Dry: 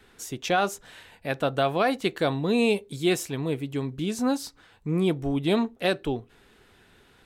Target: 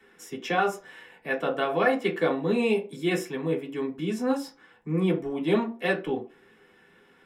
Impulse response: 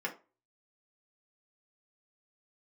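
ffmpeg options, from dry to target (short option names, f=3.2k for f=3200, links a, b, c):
-filter_complex "[1:a]atrim=start_sample=2205[a];[0:a][a]afir=irnorm=-1:irlink=0,volume=-4dB"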